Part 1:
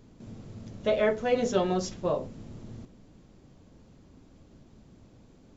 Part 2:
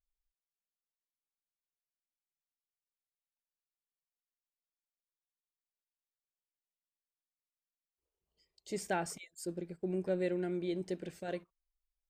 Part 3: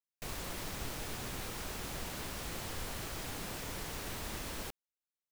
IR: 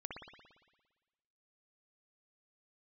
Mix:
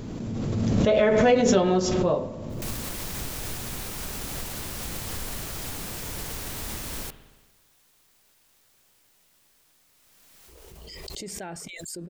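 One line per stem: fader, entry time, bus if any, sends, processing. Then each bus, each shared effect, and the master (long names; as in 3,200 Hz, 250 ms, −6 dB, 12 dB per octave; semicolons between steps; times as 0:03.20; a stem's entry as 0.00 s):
+1.0 dB, 0.00 s, send −6 dB, low-shelf EQ 61 Hz −9 dB
−7.0 dB, 2.50 s, no send, envelope flattener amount 70%
0.0 dB, 2.40 s, send −5.5 dB, high-shelf EQ 5,000 Hz +8.5 dB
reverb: on, RT60 1.3 s, pre-delay 57 ms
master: low-shelf EQ 240 Hz +4.5 dB; background raised ahead of every attack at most 21 dB per second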